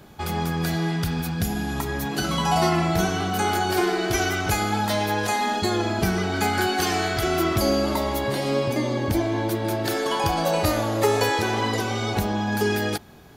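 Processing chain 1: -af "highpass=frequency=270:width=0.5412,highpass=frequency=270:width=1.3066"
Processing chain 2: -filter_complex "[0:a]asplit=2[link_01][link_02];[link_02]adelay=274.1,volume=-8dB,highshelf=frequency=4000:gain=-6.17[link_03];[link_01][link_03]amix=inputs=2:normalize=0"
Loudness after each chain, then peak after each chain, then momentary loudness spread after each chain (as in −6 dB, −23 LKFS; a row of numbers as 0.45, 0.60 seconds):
−25.0, −23.0 LKFS; −8.5, −8.5 dBFS; 7, 4 LU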